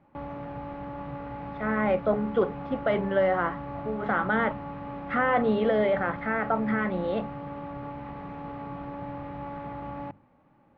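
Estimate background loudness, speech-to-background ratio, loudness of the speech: -38.0 LUFS, 11.0 dB, -27.0 LUFS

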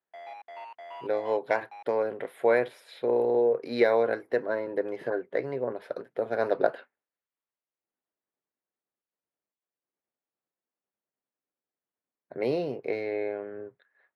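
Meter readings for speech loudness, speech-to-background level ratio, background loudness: -28.5 LUFS, 16.5 dB, -45.0 LUFS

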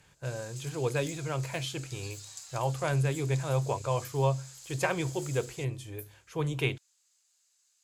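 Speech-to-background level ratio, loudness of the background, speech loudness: 13.5 dB, -46.0 LUFS, -32.5 LUFS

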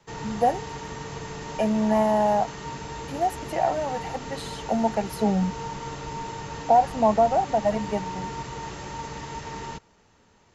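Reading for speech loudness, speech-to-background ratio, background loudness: -24.5 LUFS, 11.0 dB, -35.5 LUFS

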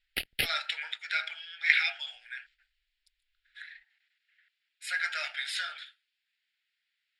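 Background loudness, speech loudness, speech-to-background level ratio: -33.0 LUFS, -31.0 LUFS, 2.0 dB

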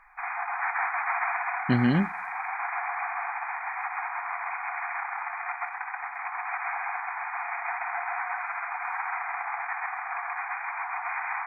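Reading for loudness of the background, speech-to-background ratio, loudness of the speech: -31.5 LUFS, 5.5 dB, -26.0 LUFS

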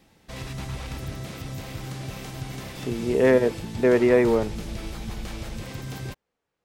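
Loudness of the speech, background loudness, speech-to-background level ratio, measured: -21.0 LUFS, -35.5 LUFS, 14.5 dB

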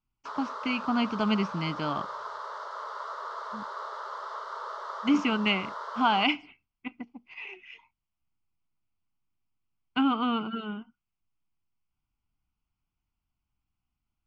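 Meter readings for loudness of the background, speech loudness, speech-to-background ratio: -38.0 LUFS, -28.5 LUFS, 9.5 dB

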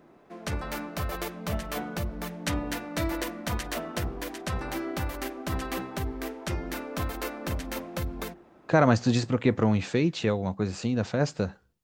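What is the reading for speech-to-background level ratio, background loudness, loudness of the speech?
7.5 dB, -33.5 LUFS, -26.0 LUFS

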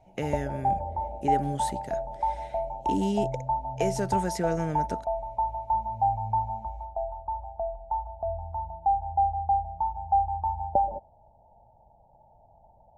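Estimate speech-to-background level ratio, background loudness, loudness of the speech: -2.0 dB, -30.0 LUFS, -32.0 LUFS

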